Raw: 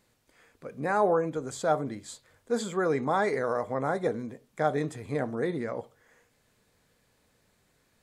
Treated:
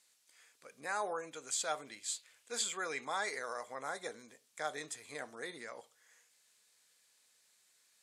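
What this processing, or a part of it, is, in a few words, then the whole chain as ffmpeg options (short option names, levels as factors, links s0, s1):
piezo pickup straight into a mixer: -filter_complex "[0:a]lowpass=8800,aderivative,asettb=1/sr,asplit=3[s0][s1][s2];[s0]atrim=end=1.334[s3];[s1]atrim=start=1.33:end=3.14,asetpts=PTS-STARTPTS,afade=t=in:d=0.004:c=qsin,afade=t=out:st=1.806:d=0.004:c=qsin,equalizer=f=2600:t=o:w=0.61:g=8.5[s4];[s2]atrim=start=3.136[s5];[s3][s4]acrossfade=d=0.004:c1=hsin:c2=qsin[s6];[s6][s5]acrossfade=d=0.004:c1=qsin:c2=hsin,volume=2.24"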